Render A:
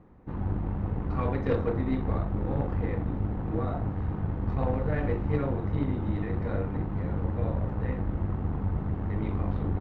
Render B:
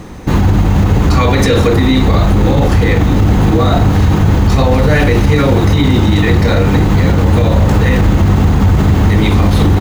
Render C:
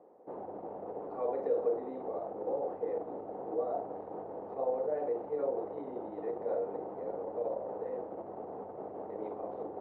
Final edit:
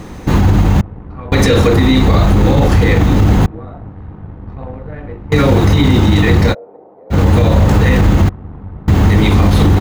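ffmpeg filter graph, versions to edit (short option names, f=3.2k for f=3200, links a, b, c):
-filter_complex "[0:a]asplit=3[a][b][c];[1:a]asplit=5[d][e][f][g][h];[d]atrim=end=0.812[i];[a]atrim=start=0.808:end=1.322[j];[e]atrim=start=1.318:end=3.462[k];[b]atrim=start=3.458:end=5.322[l];[f]atrim=start=5.318:end=6.55[m];[2:a]atrim=start=6.51:end=7.14[n];[g]atrim=start=7.1:end=8.292[o];[c]atrim=start=8.288:end=8.882[p];[h]atrim=start=8.878[q];[i][j]acrossfade=d=0.004:c1=hsin:c2=hsin[r];[r][k]acrossfade=d=0.004:c1=hsin:c2=hsin[s];[s][l]acrossfade=d=0.004:c1=hsin:c2=hsin[t];[t][m]acrossfade=d=0.004:c1=hsin:c2=hsin[u];[u][n]acrossfade=d=0.04:c1=tri:c2=tri[v];[v][o]acrossfade=d=0.04:c1=tri:c2=tri[w];[w][p]acrossfade=d=0.004:c1=hsin:c2=hsin[x];[x][q]acrossfade=d=0.004:c1=hsin:c2=hsin"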